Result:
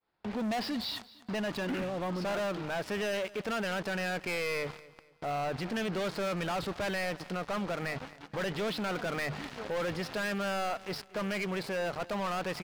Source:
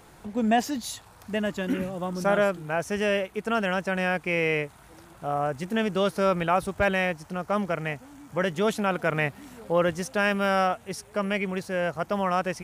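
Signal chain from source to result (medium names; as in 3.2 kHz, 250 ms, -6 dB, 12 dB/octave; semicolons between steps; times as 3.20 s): expander -42 dBFS; steep low-pass 5.1 kHz 96 dB/octave; bass shelf 320 Hz -7.5 dB; hum notches 50/100/150 Hz; waveshaping leveller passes 5; peak limiter -26.5 dBFS, peak gain reduction 15 dB; feedback delay 230 ms, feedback 35%, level -20 dB; trim -3 dB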